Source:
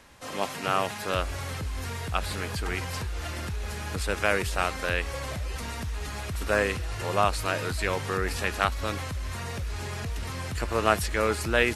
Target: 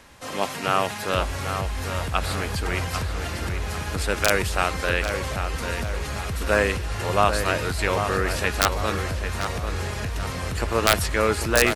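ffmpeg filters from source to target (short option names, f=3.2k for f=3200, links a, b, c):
-filter_complex "[0:a]aeval=exprs='(mod(2.51*val(0)+1,2)-1)/2.51':c=same,asplit=2[a][b];[b]adelay=795,lowpass=f=3k:p=1,volume=-7dB,asplit=2[c][d];[d]adelay=795,lowpass=f=3k:p=1,volume=0.5,asplit=2[e][f];[f]adelay=795,lowpass=f=3k:p=1,volume=0.5,asplit=2[g][h];[h]adelay=795,lowpass=f=3k:p=1,volume=0.5,asplit=2[i][j];[j]adelay=795,lowpass=f=3k:p=1,volume=0.5,asplit=2[k][l];[l]adelay=795,lowpass=f=3k:p=1,volume=0.5[m];[a][c][e][g][i][k][m]amix=inputs=7:normalize=0,volume=4dB"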